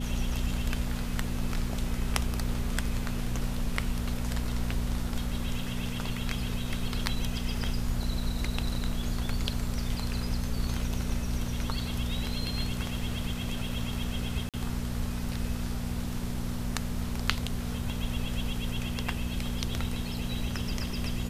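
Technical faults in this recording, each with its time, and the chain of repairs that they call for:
hum 60 Hz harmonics 4 -35 dBFS
14.49–14.54 gap 47 ms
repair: de-hum 60 Hz, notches 4; interpolate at 14.49, 47 ms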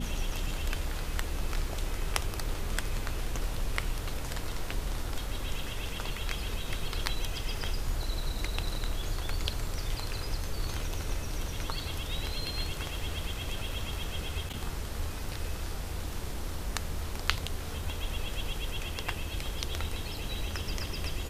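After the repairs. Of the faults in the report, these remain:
none

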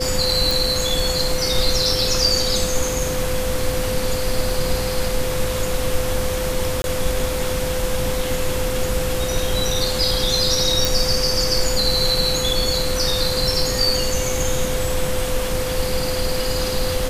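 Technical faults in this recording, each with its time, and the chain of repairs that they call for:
tone 510 Hz -24 dBFS
0.51 pop
6.82–6.84 gap 21 ms
10.85 pop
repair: de-click; notch 510 Hz, Q 30; interpolate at 6.82, 21 ms

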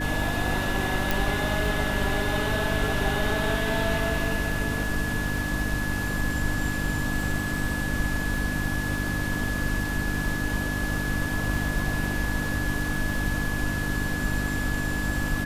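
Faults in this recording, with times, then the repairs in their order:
crackle 35/s -33 dBFS
hum 50 Hz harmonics 6 -31 dBFS
tone 1700 Hz -31 dBFS
1.11 pop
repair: de-click; de-hum 50 Hz, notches 6; notch 1700 Hz, Q 30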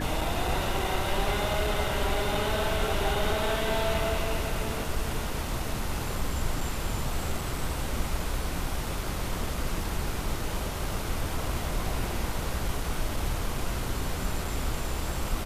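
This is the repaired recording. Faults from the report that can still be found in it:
1.11 pop

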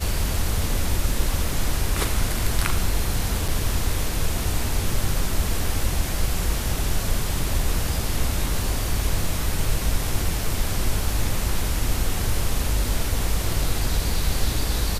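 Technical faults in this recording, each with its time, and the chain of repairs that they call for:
3.48–3.49 gap 5.4 ms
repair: interpolate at 3.48, 5.4 ms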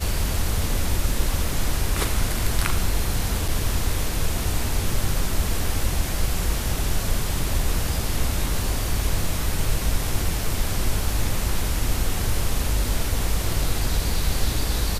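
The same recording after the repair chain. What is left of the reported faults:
none

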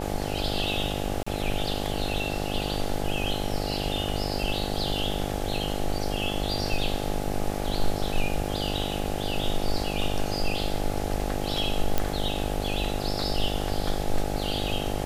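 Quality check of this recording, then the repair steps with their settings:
buzz 50 Hz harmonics 17 -31 dBFS
1.23–1.26 gap 35 ms
11.98 pop -9 dBFS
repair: de-click; de-hum 50 Hz, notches 17; interpolate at 1.23, 35 ms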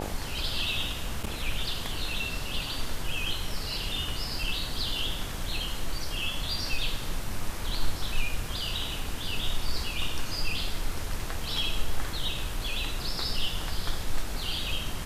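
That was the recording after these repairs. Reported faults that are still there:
none

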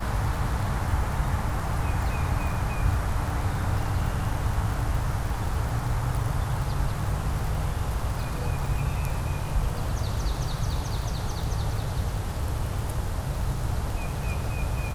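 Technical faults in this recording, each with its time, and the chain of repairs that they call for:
crackle 48/s -31 dBFS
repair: de-click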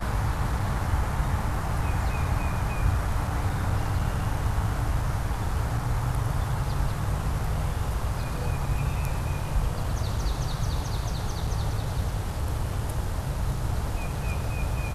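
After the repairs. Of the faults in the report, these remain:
none

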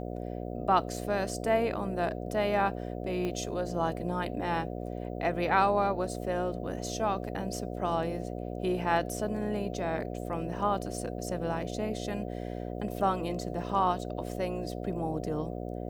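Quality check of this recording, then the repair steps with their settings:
buzz 60 Hz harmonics 12 -37 dBFS
3.25 pop -22 dBFS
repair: de-click; de-hum 60 Hz, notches 12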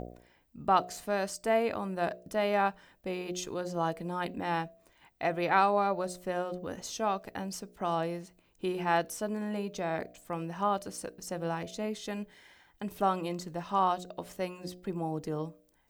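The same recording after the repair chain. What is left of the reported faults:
none

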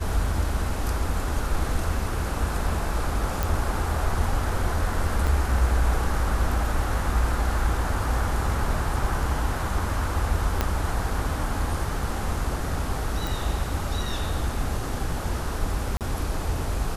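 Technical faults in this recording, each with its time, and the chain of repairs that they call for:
3.43 pop
5.27 gap 4.5 ms
10.61 pop -8 dBFS
13.27 pop
15.97–16.01 gap 38 ms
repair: de-click; interpolate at 5.27, 4.5 ms; interpolate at 15.97, 38 ms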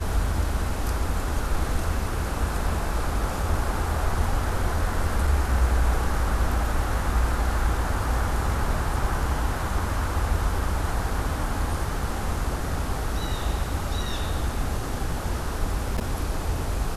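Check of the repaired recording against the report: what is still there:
10.61 pop

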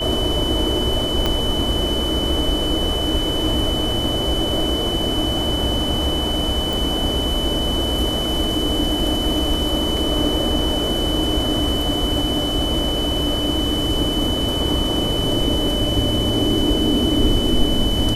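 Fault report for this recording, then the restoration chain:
tone 3000 Hz -23 dBFS
1.26 pop -6 dBFS
6.73 pop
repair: de-click; notch 3000 Hz, Q 30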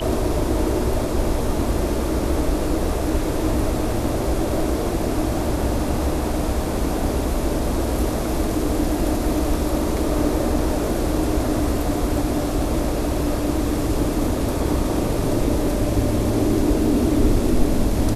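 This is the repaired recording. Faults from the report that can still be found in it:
1.26 pop

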